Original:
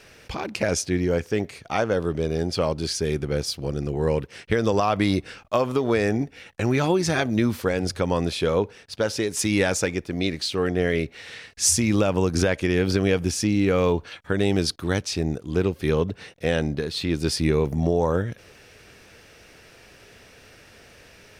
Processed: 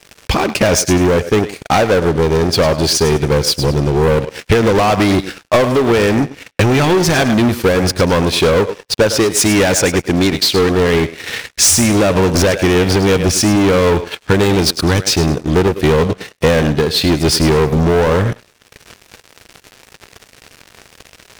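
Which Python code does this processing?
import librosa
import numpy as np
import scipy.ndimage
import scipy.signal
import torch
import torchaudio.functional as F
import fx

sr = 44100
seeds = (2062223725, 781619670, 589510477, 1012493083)

y = fx.echo_thinned(x, sr, ms=104, feedback_pct=31, hz=360.0, wet_db=-11.0)
y = fx.leveller(y, sr, passes=5)
y = fx.transient(y, sr, attack_db=4, sustain_db=-11)
y = y * librosa.db_to_amplitude(-1.5)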